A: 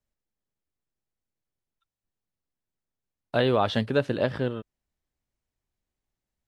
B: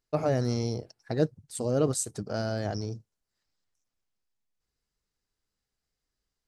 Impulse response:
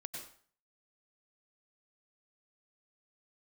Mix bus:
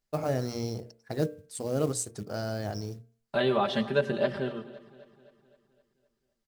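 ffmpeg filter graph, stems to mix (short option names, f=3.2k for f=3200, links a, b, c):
-filter_complex "[0:a]aecho=1:1:5.1:0.91,volume=-7dB,asplit=3[a][b][c];[b]volume=-8dB[d];[c]volume=-17dB[e];[1:a]bandreject=f=226.1:t=h:w=4,bandreject=f=452.2:t=h:w=4,bandreject=f=678.3:t=h:w=4,bandreject=f=904.4:t=h:w=4,bandreject=f=1.1305k:t=h:w=4,bandreject=f=1.3566k:t=h:w=4,bandreject=f=1.5827k:t=h:w=4,bandreject=f=1.8088k:t=h:w=4,bandreject=f=2.0349k:t=h:w=4,bandreject=f=2.261k:t=h:w=4,bandreject=f=2.4871k:t=h:w=4,bandreject=f=2.7132k:t=h:w=4,acrusher=bits=6:mode=log:mix=0:aa=0.000001,volume=-2dB[f];[2:a]atrim=start_sample=2205[g];[d][g]afir=irnorm=-1:irlink=0[h];[e]aecho=0:1:259|518|777|1036|1295|1554|1813|2072:1|0.55|0.303|0.166|0.0915|0.0503|0.0277|0.0152[i];[a][f][h][i]amix=inputs=4:normalize=0,bandreject=f=60:t=h:w=6,bandreject=f=120:t=h:w=6,bandreject=f=180:t=h:w=6,bandreject=f=240:t=h:w=6,bandreject=f=300:t=h:w=6,bandreject=f=360:t=h:w=6,bandreject=f=420:t=h:w=6,bandreject=f=480:t=h:w=6,bandreject=f=540:t=h:w=6,bandreject=f=600:t=h:w=6"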